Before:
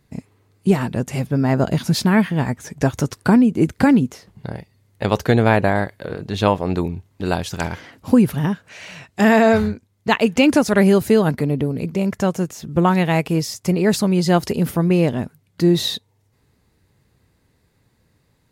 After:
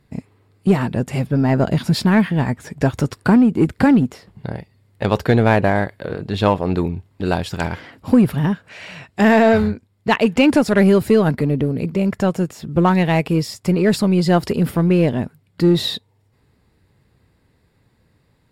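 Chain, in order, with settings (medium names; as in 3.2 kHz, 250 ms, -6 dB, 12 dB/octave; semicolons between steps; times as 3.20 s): treble shelf 6.1 kHz -7.5 dB; band-stop 6.2 kHz, Q 6; in parallel at -6.5 dB: hard clipper -16.5 dBFS, distortion -7 dB; on the sum: trim -1 dB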